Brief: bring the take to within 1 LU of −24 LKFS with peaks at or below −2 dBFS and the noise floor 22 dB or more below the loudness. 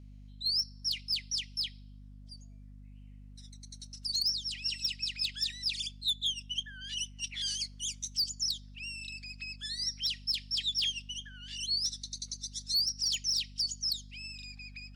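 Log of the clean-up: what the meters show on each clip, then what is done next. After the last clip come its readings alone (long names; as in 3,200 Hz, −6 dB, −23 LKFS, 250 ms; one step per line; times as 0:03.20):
share of clipped samples 0.1%; peaks flattened at −24.5 dBFS; mains hum 50 Hz; hum harmonics up to 250 Hz; level of the hum −48 dBFS; integrated loudness −32.5 LKFS; sample peak −24.5 dBFS; target loudness −24.0 LKFS
→ clipped peaks rebuilt −24.5 dBFS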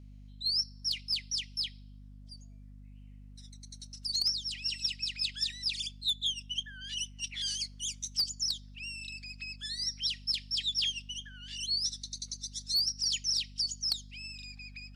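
share of clipped samples 0.0%; mains hum 50 Hz; hum harmonics up to 250 Hz; level of the hum −48 dBFS
→ mains-hum notches 50/100/150/200/250 Hz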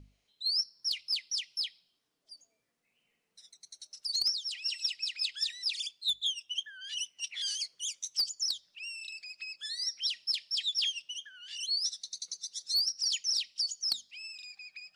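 mains hum none found; integrated loudness −32.5 LKFS; sample peak −15.5 dBFS; target loudness −24.0 LKFS
→ level +8.5 dB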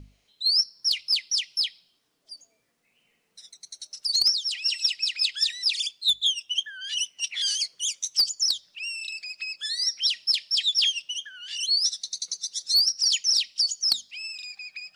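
integrated loudness −24.0 LKFS; sample peak −7.0 dBFS; background noise floor −70 dBFS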